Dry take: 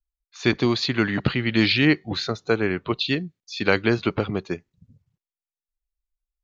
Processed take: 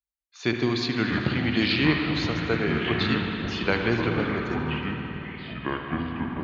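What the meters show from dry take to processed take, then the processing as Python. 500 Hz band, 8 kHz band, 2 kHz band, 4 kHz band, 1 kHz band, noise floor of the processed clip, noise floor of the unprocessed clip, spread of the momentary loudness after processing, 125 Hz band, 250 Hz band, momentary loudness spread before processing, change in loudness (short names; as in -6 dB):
-3.0 dB, n/a, -1.5 dB, -2.5 dB, +1.5 dB, -61 dBFS, under -85 dBFS, 9 LU, -0.5 dB, -1.5 dB, 8 LU, -3.0 dB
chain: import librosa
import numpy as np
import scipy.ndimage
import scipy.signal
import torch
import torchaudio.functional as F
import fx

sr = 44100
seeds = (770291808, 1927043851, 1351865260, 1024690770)

y = scipy.signal.sosfilt(scipy.signal.butter(2, 81.0, 'highpass', fs=sr, output='sos'), x)
y = fx.echo_pitch(y, sr, ms=456, semitones=-6, count=2, db_per_echo=-6.0)
y = fx.echo_thinned(y, sr, ms=77, feedback_pct=82, hz=420.0, wet_db=-14.5)
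y = fx.rev_spring(y, sr, rt60_s=3.7, pass_ms=(52, 60), chirp_ms=55, drr_db=2.5)
y = y * 10.0 ** (-5.0 / 20.0)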